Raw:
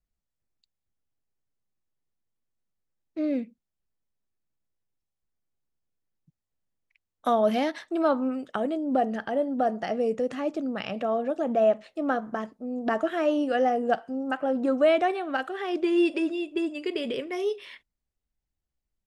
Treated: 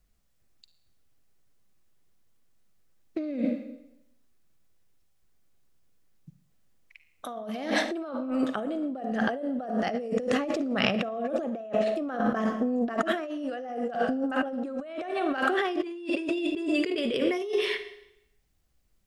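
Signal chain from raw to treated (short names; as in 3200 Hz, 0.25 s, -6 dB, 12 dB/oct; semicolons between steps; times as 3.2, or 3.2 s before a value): notch 890 Hz, Q 12; on a send at -10 dB: reverb RT60 0.80 s, pre-delay 41 ms; on the sum: negative-ratio compressor -36 dBFS, ratio -1; gain +5.5 dB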